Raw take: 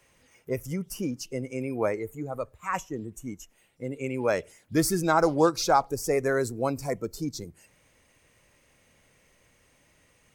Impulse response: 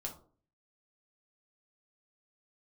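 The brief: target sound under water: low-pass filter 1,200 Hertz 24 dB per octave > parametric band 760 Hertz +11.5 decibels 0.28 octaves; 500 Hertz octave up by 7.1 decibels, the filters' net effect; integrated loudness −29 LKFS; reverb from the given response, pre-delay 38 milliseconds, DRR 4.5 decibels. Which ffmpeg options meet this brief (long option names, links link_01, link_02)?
-filter_complex "[0:a]equalizer=frequency=500:width_type=o:gain=7,asplit=2[link_01][link_02];[1:a]atrim=start_sample=2205,adelay=38[link_03];[link_02][link_03]afir=irnorm=-1:irlink=0,volume=-3dB[link_04];[link_01][link_04]amix=inputs=2:normalize=0,lowpass=frequency=1200:width=0.5412,lowpass=frequency=1200:width=1.3066,equalizer=frequency=760:width_type=o:width=0.28:gain=11.5,volume=-8.5dB"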